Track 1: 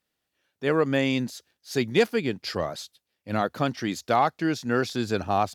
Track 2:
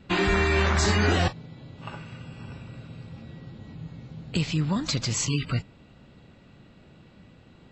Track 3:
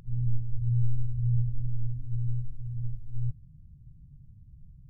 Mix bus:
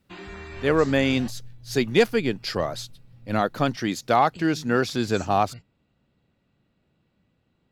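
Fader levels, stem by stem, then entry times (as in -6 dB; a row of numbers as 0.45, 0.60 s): +2.5, -17.0, -16.5 dB; 0.00, 0.00, 0.45 s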